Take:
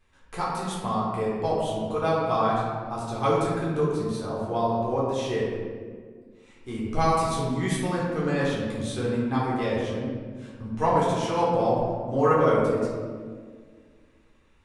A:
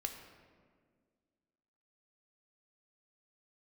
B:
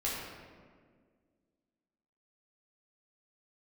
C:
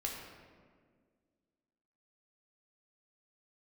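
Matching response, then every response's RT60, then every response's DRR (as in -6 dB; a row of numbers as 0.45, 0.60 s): B; 1.8, 1.8, 1.8 s; 4.0, -7.0, -1.5 dB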